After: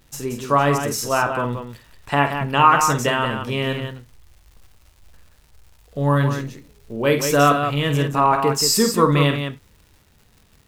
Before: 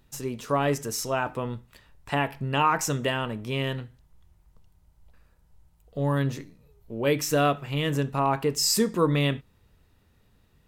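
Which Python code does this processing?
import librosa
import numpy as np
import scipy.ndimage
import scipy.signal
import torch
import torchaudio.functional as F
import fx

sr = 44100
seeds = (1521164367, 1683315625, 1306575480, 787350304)

y = fx.dmg_crackle(x, sr, seeds[0], per_s=230.0, level_db=-47.0)
y = fx.dynamic_eq(y, sr, hz=1200.0, q=1.5, threshold_db=-38.0, ratio=4.0, max_db=6)
y = fx.echo_multitap(y, sr, ms=(49, 178), db=(-8.0, -7.0))
y = y * librosa.db_to_amplitude(4.5)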